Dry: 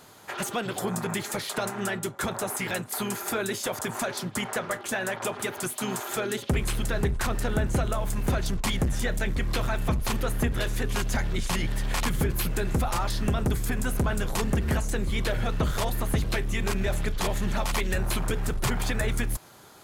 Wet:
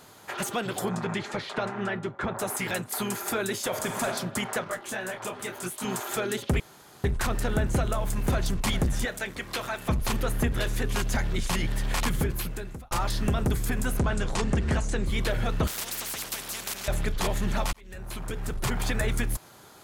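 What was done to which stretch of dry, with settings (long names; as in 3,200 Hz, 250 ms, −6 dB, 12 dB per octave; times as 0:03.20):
0:00.88–0:02.38: low-pass filter 5,100 Hz → 2,100 Hz
0:03.67–0:04.08: thrown reverb, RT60 0.99 s, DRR 3.5 dB
0:04.64–0:05.85: micro pitch shift up and down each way 29 cents
0:06.60–0:07.04: fill with room tone
0:07.92–0:08.46: delay throw 400 ms, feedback 35%, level −13.5 dB
0:09.05–0:09.89: high-pass filter 510 Hz 6 dB per octave
0:12.13–0:12.91: fade out
0:13.99–0:15.06: low-pass filter 8,600 Hz 24 dB per octave
0:15.67–0:16.88: every bin compressed towards the loudest bin 10 to 1
0:17.73–0:18.90: fade in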